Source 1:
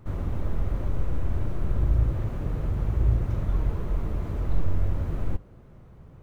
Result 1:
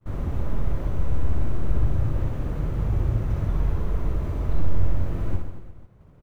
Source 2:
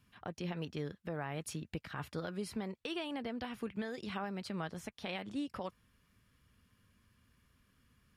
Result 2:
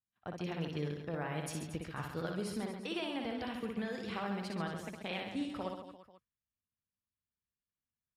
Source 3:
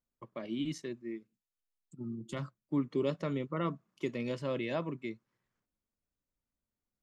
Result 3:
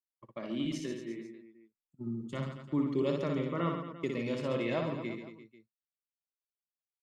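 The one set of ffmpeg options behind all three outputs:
-af "agate=range=0.0224:threshold=0.00794:ratio=3:detection=peak,aecho=1:1:60|135|228.8|345.9|492.4:0.631|0.398|0.251|0.158|0.1"

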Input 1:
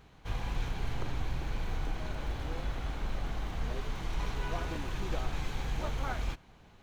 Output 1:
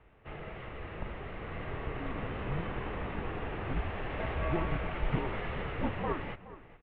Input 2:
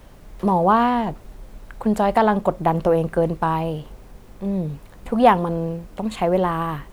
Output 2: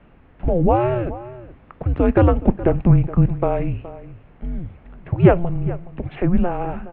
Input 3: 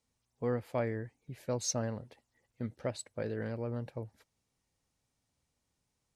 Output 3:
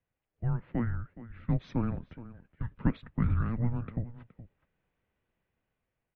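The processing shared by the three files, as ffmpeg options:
-filter_complex "[0:a]acrossover=split=160[s0][s1];[s1]dynaudnorm=f=600:g=5:m=2.24[s2];[s0][s2]amix=inputs=2:normalize=0,highpass=f=360:t=q:w=0.5412,highpass=f=360:t=q:w=1.307,lowpass=f=3100:t=q:w=0.5176,lowpass=f=3100:t=q:w=0.7071,lowpass=f=3100:t=q:w=1.932,afreqshift=-350,lowshelf=f=140:g=11,asplit=2[s3][s4];[s4]adelay=419.8,volume=0.158,highshelf=f=4000:g=-9.45[s5];[s3][s5]amix=inputs=2:normalize=0,volume=0.891"

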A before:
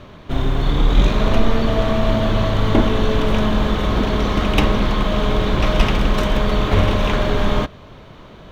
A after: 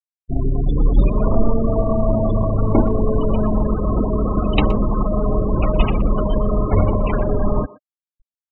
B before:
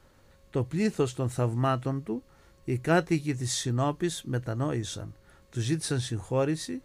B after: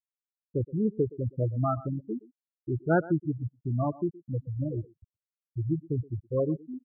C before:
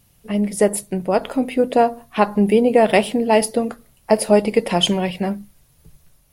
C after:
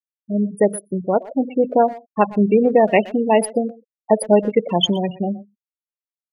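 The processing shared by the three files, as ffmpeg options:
-filter_complex "[0:a]afftfilt=real='re*gte(hypot(re,im),0.178)':imag='im*gte(hypot(re,im),0.178)':win_size=1024:overlap=0.75,asplit=2[s0][s1];[s1]adelay=120,highpass=300,lowpass=3400,asoftclip=type=hard:threshold=0.282,volume=0.126[s2];[s0][s2]amix=inputs=2:normalize=0"

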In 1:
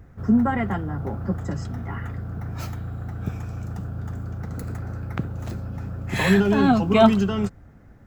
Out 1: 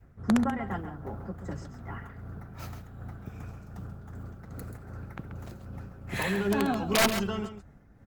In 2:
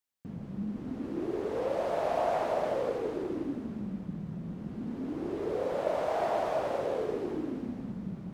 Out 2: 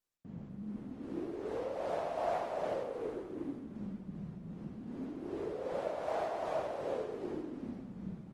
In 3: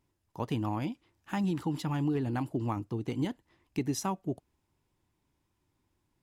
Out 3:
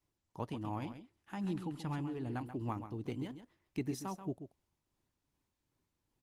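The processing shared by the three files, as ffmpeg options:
-filter_complex "[0:a]adynamicequalizer=threshold=0.0178:dfrequency=170:dqfactor=0.71:tfrequency=170:tqfactor=0.71:attack=5:release=100:ratio=0.375:range=2.5:mode=cutabove:tftype=bell,tremolo=f=2.6:d=0.45,aeval=exprs='(mod(3.76*val(0)+1,2)-1)/3.76':c=same,asplit=2[s0][s1];[s1]aecho=0:1:134:0.316[s2];[s0][s2]amix=inputs=2:normalize=0,volume=0.596" -ar 48000 -c:a libopus -b:a 24k

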